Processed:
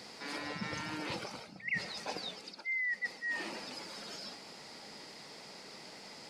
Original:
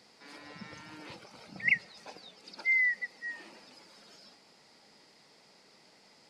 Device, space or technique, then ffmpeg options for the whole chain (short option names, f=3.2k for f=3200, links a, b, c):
compression on the reversed sound: -af "areverse,acompressor=threshold=-45dB:ratio=8,areverse,volume=10.5dB"